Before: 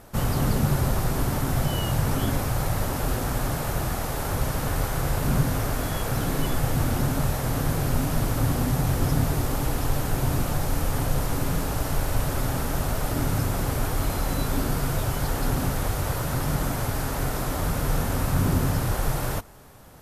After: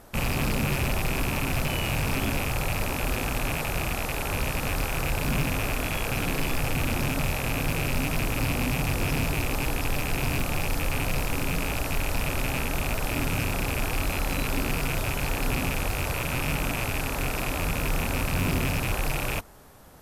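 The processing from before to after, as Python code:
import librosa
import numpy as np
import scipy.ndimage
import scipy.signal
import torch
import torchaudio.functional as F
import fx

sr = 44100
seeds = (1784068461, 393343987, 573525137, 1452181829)

y = fx.rattle_buzz(x, sr, strikes_db=-30.0, level_db=-17.0)
y = fx.peak_eq(y, sr, hz=120.0, db=-4.5, octaves=0.64)
y = 10.0 ** (-17.5 / 20.0) * (np.abs((y / 10.0 ** (-17.5 / 20.0) + 3.0) % 4.0 - 2.0) - 1.0)
y = F.gain(torch.from_numpy(y), -1.5).numpy()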